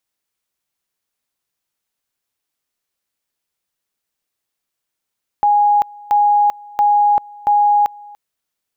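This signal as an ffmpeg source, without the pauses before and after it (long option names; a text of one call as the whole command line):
ffmpeg -f lavfi -i "aevalsrc='pow(10,(-9.5-24.5*gte(mod(t,0.68),0.39))/20)*sin(2*PI*826*t)':duration=2.72:sample_rate=44100" out.wav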